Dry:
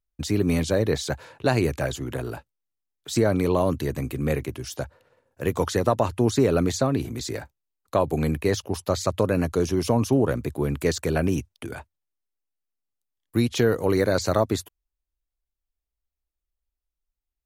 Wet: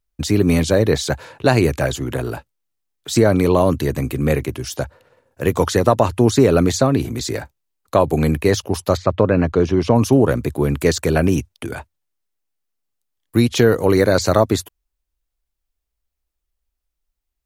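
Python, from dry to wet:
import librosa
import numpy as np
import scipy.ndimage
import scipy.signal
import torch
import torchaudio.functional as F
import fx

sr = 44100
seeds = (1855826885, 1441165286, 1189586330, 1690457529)

y = fx.lowpass(x, sr, hz=fx.line((8.96, 2200.0), (9.94, 3800.0)), slope=12, at=(8.96, 9.94), fade=0.02)
y = y * 10.0 ** (7.0 / 20.0)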